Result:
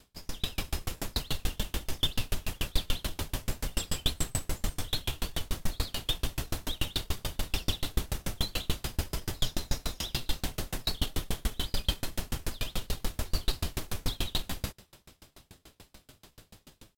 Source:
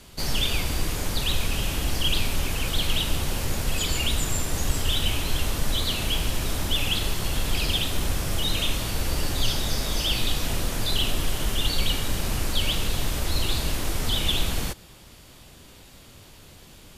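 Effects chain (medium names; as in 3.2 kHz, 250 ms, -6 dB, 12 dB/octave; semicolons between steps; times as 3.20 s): level rider gain up to 7.5 dB; pitch shift +1.5 st; sawtooth tremolo in dB decaying 6.9 Hz, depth 35 dB; trim -6 dB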